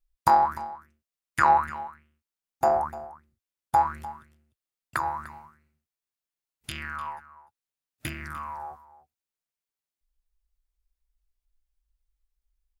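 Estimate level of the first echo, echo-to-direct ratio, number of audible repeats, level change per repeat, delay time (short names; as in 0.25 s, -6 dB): -17.0 dB, -17.0 dB, 1, no steady repeat, 0.298 s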